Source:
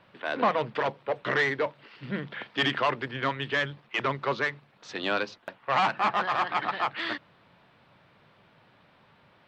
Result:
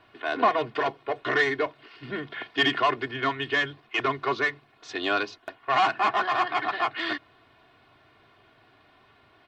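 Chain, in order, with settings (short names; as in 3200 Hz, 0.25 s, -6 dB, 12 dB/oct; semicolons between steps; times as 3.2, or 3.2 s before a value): comb 2.8 ms, depth 78%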